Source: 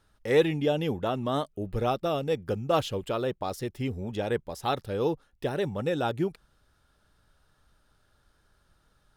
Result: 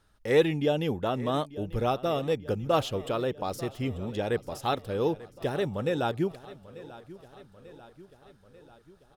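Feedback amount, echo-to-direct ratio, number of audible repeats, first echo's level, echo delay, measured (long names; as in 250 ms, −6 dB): 58%, −16.0 dB, 4, −18.0 dB, 891 ms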